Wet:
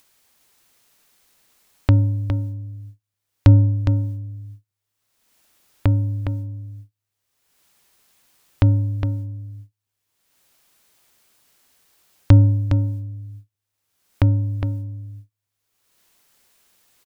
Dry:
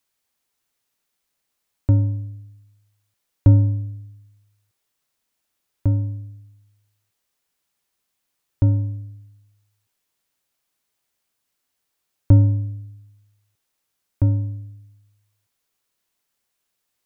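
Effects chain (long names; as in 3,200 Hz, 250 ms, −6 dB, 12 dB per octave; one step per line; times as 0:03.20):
noise gate −43 dBFS, range −48 dB
upward compression, threshold −18 dBFS
single-tap delay 411 ms −7 dB
level +1.5 dB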